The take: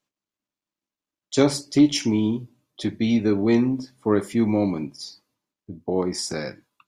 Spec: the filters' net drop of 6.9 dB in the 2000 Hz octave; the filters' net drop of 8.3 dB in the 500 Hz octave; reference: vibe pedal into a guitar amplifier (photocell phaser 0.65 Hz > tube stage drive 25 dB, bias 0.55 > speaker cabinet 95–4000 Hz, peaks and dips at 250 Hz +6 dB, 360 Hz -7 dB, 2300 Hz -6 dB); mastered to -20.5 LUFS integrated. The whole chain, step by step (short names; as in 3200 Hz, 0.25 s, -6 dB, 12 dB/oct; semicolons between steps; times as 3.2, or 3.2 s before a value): bell 500 Hz -7.5 dB; bell 2000 Hz -5 dB; photocell phaser 0.65 Hz; tube stage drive 25 dB, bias 0.55; speaker cabinet 95–4000 Hz, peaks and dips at 250 Hz +6 dB, 360 Hz -7 dB, 2300 Hz -6 dB; gain +12.5 dB